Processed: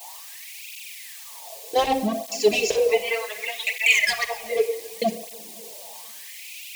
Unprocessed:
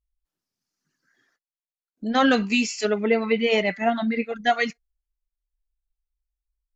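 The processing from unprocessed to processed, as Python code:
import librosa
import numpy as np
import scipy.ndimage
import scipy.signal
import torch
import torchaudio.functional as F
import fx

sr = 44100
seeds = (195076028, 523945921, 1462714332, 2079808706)

p1 = fx.block_reorder(x, sr, ms=193.0, group=3)
p2 = fx.low_shelf(p1, sr, hz=200.0, db=6.0)
p3 = fx.quant_dither(p2, sr, seeds[0], bits=6, dither='triangular')
p4 = p2 + (p3 * librosa.db_to_amplitude(-3.5))
p5 = fx.filter_lfo_highpass(p4, sr, shape='sine', hz=0.34, low_hz=220.0, high_hz=2500.0, q=6.7)
p6 = np.clip(p5, -10.0 ** (-8.0 / 20.0), 10.0 ** (-8.0 / 20.0))
p7 = fx.fixed_phaser(p6, sr, hz=580.0, stages=4)
p8 = p7 + fx.echo_feedback(p7, sr, ms=254, feedback_pct=56, wet_db=-22.5, dry=0)
p9 = fx.room_shoebox(p8, sr, seeds[1], volume_m3=2500.0, walls='furnished', distance_m=1.6)
p10 = fx.flanger_cancel(p9, sr, hz=0.66, depth_ms=6.8)
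y = p10 * librosa.db_to_amplitude(1.5)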